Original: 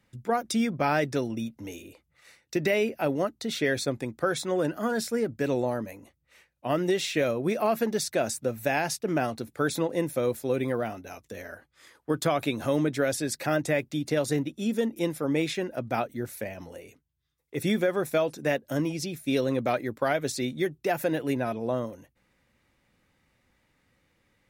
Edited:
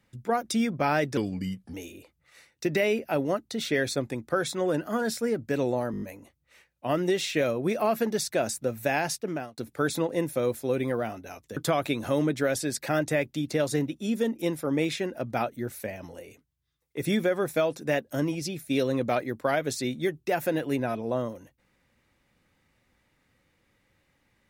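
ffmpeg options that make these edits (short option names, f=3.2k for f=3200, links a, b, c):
-filter_complex "[0:a]asplit=10[a][b][c][d][e][f][g][h][i][j];[a]atrim=end=1.174[k];[b]atrim=start=1.17:end=1.64,asetpts=PTS-STARTPTS,asetrate=36603,aresample=44100,atrim=end_sample=24972,asetpts=PTS-STARTPTS[l];[c]atrim=start=1.636:end=5.842[m];[d]atrim=start=5.818:end=5.842[n];[e]atrim=start=5.818:end=5.842[o];[f]atrim=start=5.818:end=5.842[p];[g]atrim=start=5.818:end=5.842[q];[h]atrim=start=5.818:end=9.38,asetpts=PTS-STARTPTS,afade=t=out:st=3.132:d=0.43[r];[i]atrim=start=9.38:end=11.372,asetpts=PTS-STARTPTS,afade=t=in:d=0.004:c=hsin[s];[j]atrim=start=12.138[t];[k][l]acrossfade=d=0.004:c1=hsin:c2=hsin[u];[u][m]acrossfade=d=0.004:c1=hsin:c2=hsin[v];[v][n]acrossfade=d=0.004:c1=hsin:c2=hsin[w];[w][o]acrossfade=d=0.004:c1=hsin:c2=hsin[x];[x][p]acrossfade=d=0.004:c1=hsin:c2=hsin[y];[y][q]acrossfade=d=0.004:c1=hsin:c2=hsin[z];[r][s]concat=n=2:v=0:a=1[aa];[z][aa]acrossfade=d=0.004:c1=hsin:c2=hsin[ab];[ab][t]acrossfade=d=0.004:c1=hsin:c2=hsin"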